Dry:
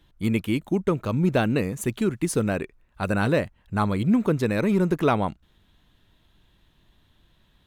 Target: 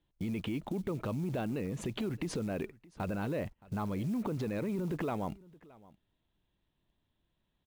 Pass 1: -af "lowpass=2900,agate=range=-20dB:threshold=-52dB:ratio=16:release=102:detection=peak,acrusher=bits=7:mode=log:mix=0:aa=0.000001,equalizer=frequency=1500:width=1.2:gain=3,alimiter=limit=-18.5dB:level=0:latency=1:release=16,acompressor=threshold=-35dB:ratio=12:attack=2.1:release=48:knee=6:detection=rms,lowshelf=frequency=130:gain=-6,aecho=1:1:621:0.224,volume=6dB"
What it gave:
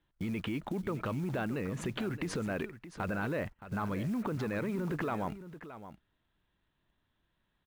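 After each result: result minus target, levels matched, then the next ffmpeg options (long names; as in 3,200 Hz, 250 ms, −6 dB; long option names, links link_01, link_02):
echo-to-direct +9.5 dB; 2,000 Hz band +6.0 dB
-af "lowpass=2900,agate=range=-20dB:threshold=-52dB:ratio=16:release=102:detection=peak,acrusher=bits=7:mode=log:mix=0:aa=0.000001,equalizer=frequency=1500:width=1.2:gain=3,alimiter=limit=-18.5dB:level=0:latency=1:release=16,acompressor=threshold=-35dB:ratio=12:attack=2.1:release=48:knee=6:detection=rms,lowshelf=frequency=130:gain=-6,aecho=1:1:621:0.075,volume=6dB"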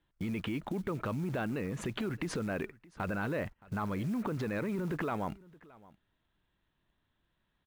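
2,000 Hz band +6.0 dB
-af "lowpass=2900,agate=range=-20dB:threshold=-52dB:ratio=16:release=102:detection=peak,acrusher=bits=7:mode=log:mix=0:aa=0.000001,equalizer=frequency=1500:width=1.2:gain=-6,alimiter=limit=-18.5dB:level=0:latency=1:release=16,acompressor=threshold=-35dB:ratio=12:attack=2.1:release=48:knee=6:detection=rms,lowshelf=frequency=130:gain=-6,aecho=1:1:621:0.075,volume=6dB"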